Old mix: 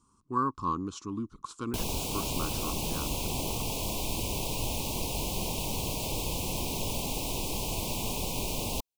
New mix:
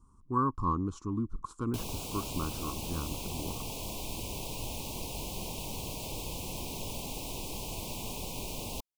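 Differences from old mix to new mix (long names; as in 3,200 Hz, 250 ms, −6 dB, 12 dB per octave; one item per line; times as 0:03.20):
speech: remove meter weighting curve D
background −6.0 dB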